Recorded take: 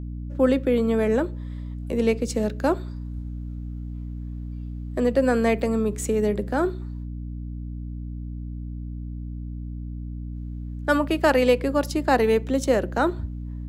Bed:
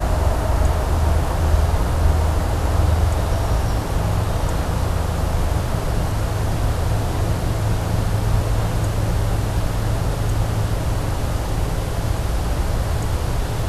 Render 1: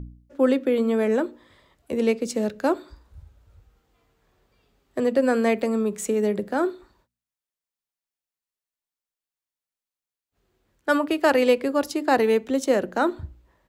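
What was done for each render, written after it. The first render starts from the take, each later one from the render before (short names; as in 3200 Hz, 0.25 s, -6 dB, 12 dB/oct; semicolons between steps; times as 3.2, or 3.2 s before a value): de-hum 60 Hz, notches 5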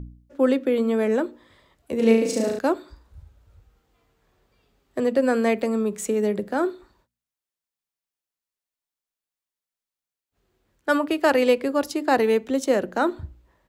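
1.96–2.59 flutter echo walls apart 6.1 m, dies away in 0.69 s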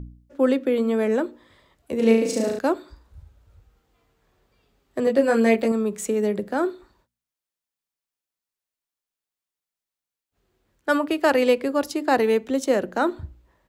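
5.05–5.72 doubler 18 ms -2.5 dB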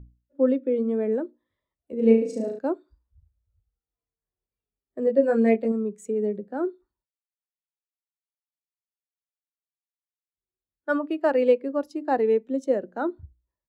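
spectral expander 1.5:1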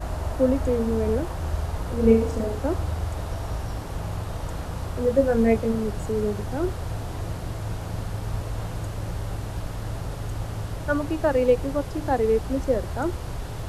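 add bed -10.5 dB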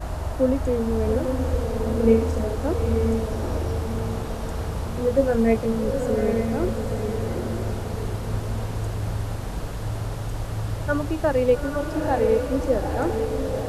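diffused feedback echo 0.865 s, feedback 46%, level -4.5 dB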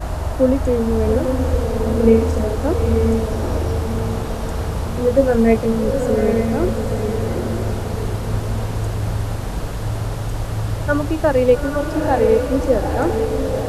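gain +5.5 dB; limiter -2 dBFS, peak gain reduction 2 dB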